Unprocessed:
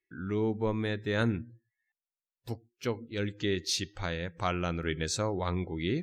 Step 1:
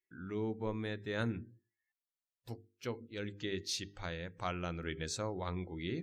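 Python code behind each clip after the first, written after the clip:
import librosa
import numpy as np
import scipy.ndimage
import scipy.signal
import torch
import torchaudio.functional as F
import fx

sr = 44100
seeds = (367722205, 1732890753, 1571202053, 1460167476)

y = fx.hum_notches(x, sr, base_hz=50, count=9)
y = y * 10.0 ** (-7.0 / 20.0)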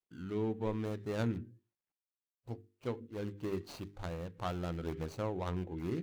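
y = scipy.signal.medfilt(x, 25)
y = y * 10.0 ** (2.5 / 20.0)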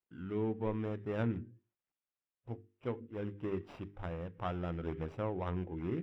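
y = scipy.signal.savgol_filter(x, 25, 4, mode='constant')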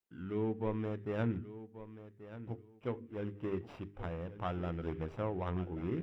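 y = fx.echo_feedback(x, sr, ms=1133, feedback_pct=21, wet_db=-14.0)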